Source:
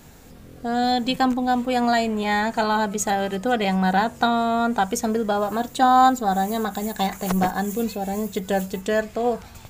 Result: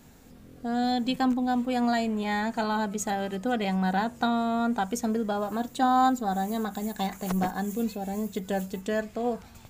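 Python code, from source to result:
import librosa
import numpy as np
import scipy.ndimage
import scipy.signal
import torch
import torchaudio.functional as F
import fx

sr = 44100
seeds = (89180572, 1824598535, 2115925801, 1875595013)

y = fx.peak_eq(x, sr, hz=240.0, db=5.0, octaves=0.69)
y = y * 10.0 ** (-7.5 / 20.0)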